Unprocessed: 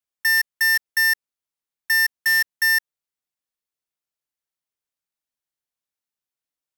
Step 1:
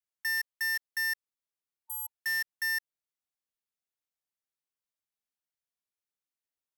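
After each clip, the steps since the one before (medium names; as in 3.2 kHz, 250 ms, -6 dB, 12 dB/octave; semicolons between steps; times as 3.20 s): spectral replace 1.82–2.20 s, 920–7700 Hz before; peak limiter -23 dBFS, peak gain reduction 6 dB; trim -6.5 dB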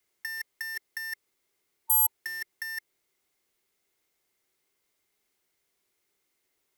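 compressor with a negative ratio -37 dBFS, ratio -0.5; small resonant body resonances 380/2100 Hz, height 11 dB, ringing for 30 ms; trim +8.5 dB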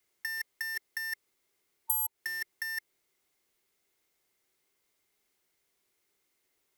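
compression 12:1, threshold -26 dBFS, peak gain reduction 9 dB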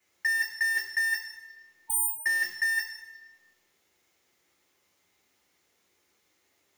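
reverberation RT60 1.1 s, pre-delay 3 ms, DRR -2 dB; trim -2.5 dB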